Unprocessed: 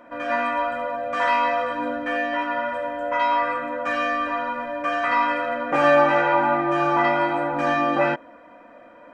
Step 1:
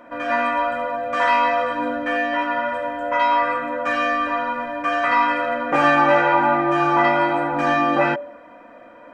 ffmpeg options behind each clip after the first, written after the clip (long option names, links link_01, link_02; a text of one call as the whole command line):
ffmpeg -i in.wav -af "bandreject=frequency=193:width_type=h:width=4,bandreject=frequency=386:width_type=h:width=4,bandreject=frequency=579:width_type=h:width=4,bandreject=frequency=772:width_type=h:width=4,volume=3dB" out.wav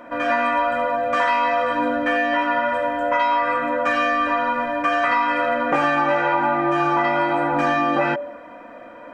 ffmpeg -i in.wav -af "acompressor=threshold=-20dB:ratio=6,volume=4dB" out.wav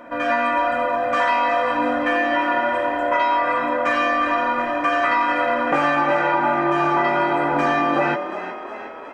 ffmpeg -i in.wav -filter_complex "[0:a]asplit=8[link_01][link_02][link_03][link_04][link_05][link_06][link_07][link_08];[link_02]adelay=364,afreqshift=36,volume=-11.5dB[link_09];[link_03]adelay=728,afreqshift=72,volume=-16.1dB[link_10];[link_04]adelay=1092,afreqshift=108,volume=-20.7dB[link_11];[link_05]adelay=1456,afreqshift=144,volume=-25.2dB[link_12];[link_06]adelay=1820,afreqshift=180,volume=-29.8dB[link_13];[link_07]adelay=2184,afreqshift=216,volume=-34.4dB[link_14];[link_08]adelay=2548,afreqshift=252,volume=-39dB[link_15];[link_01][link_09][link_10][link_11][link_12][link_13][link_14][link_15]amix=inputs=8:normalize=0" out.wav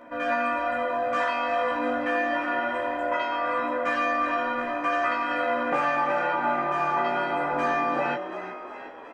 ffmpeg -i in.wav -filter_complex "[0:a]asplit=2[link_01][link_02];[link_02]adelay=16,volume=-3.5dB[link_03];[link_01][link_03]amix=inputs=2:normalize=0,volume=-8dB" out.wav